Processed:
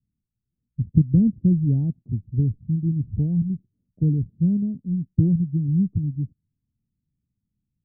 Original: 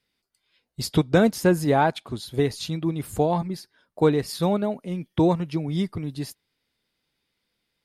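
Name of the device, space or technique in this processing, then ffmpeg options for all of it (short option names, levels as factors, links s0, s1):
the neighbour's flat through the wall: -af "lowpass=f=210:w=0.5412,lowpass=f=210:w=1.3066,equalizer=f=100:t=o:w=0.77:g=6,volume=2"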